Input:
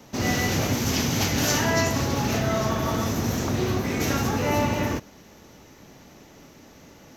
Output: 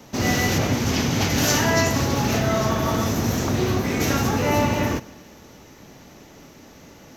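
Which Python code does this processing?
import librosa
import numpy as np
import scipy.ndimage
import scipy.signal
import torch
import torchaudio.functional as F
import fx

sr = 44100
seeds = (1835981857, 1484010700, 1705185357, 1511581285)

p1 = fx.high_shelf(x, sr, hz=6200.0, db=-8.5, at=(0.58, 1.3))
p2 = p1 + fx.echo_feedback(p1, sr, ms=146, feedback_pct=55, wet_db=-23.5, dry=0)
y = p2 * 10.0 ** (3.0 / 20.0)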